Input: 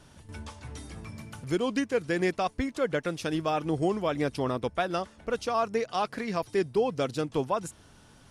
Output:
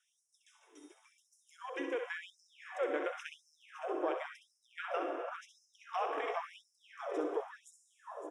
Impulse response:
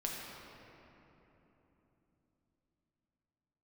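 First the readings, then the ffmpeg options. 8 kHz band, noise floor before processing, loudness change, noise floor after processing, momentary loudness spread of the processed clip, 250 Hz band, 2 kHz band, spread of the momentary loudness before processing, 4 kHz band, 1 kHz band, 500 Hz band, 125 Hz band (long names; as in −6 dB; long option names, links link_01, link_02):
below −15 dB, −56 dBFS, −10.0 dB, −78 dBFS, 21 LU, −15.5 dB, −7.5 dB, 15 LU, −13.0 dB, −9.0 dB, −10.5 dB, below −40 dB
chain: -filter_complex "[0:a]lowpass=8500,afwtdn=0.0158,highshelf=frequency=4700:gain=7.5,acompressor=threshold=-29dB:ratio=6,asuperstop=centerf=4400:order=8:qfactor=3.2,aecho=1:1:563:0.282,asplit=2[link_01][link_02];[1:a]atrim=start_sample=2205,asetrate=25137,aresample=44100,adelay=65[link_03];[link_02][link_03]afir=irnorm=-1:irlink=0,volume=-7.5dB[link_04];[link_01][link_04]amix=inputs=2:normalize=0,afftfilt=real='re*gte(b*sr/1024,260*pow(4200/260,0.5+0.5*sin(2*PI*0.93*pts/sr)))':imag='im*gte(b*sr/1024,260*pow(4200/260,0.5+0.5*sin(2*PI*0.93*pts/sr)))':win_size=1024:overlap=0.75,volume=-2.5dB"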